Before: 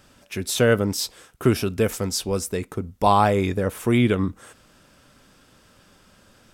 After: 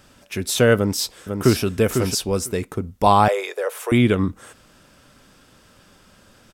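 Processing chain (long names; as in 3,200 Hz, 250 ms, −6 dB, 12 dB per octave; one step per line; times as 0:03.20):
0:00.76–0:01.64: delay throw 500 ms, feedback 10%, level −6 dB
0:03.28–0:03.92: Butterworth high-pass 430 Hz 48 dB per octave
level +2.5 dB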